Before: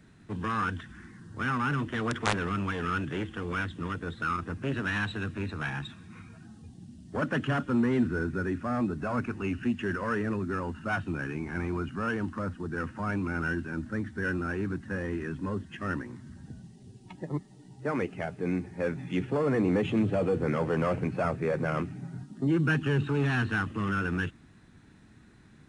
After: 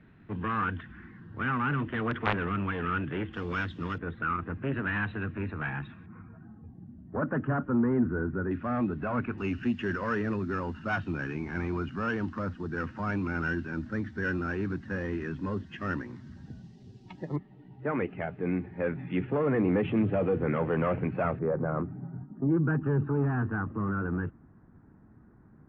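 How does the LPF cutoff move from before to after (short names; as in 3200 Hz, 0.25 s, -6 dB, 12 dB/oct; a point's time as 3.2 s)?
LPF 24 dB/oct
2900 Hz
from 3.33 s 5400 Hz
from 3.98 s 2500 Hz
from 6.06 s 1500 Hz
from 8.51 s 3100 Hz
from 9.38 s 5600 Hz
from 17.36 s 2700 Hz
from 21.39 s 1300 Hz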